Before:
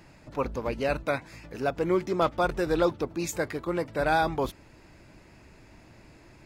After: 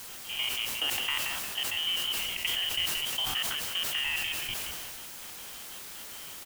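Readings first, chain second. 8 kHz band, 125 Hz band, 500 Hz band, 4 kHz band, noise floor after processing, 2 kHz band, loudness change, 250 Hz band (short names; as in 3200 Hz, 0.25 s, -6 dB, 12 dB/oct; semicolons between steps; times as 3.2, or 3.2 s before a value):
+9.0 dB, -15.5 dB, -22.5 dB, +16.5 dB, -44 dBFS, +1.0 dB, -1.5 dB, -20.5 dB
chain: stepped spectrum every 0.1 s; HPF 150 Hz 12 dB/oct; inverted band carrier 3400 Hz; step gate ".x.xxx.x." 184 bpm -24 dB; low shelf 490 Hz +8.5 dB; compressor 6:1, threshold -34 dBFS, peak gain reduction 12.5 dB; on a send: frequency-shifting echo 0.176 s, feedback 34%, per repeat -84 Hz, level -9.5 dB; on the sum: requantised 8-bit, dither triangular; sustainer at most 20 dB/s; gain +4.5 dB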